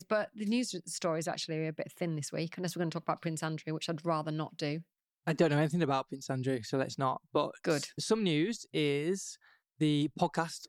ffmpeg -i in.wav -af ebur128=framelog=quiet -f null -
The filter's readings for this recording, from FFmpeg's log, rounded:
Integrated loudness:
  I:         -33.7 LUFS
  Threshold: -43.9 LUFS
Loudness range:
  LRA:         3.5 LU
  Threshold: -53.9 LUFS
  LRA low:   -36.1 LUFS
  LRA high:  -32.7 LUFS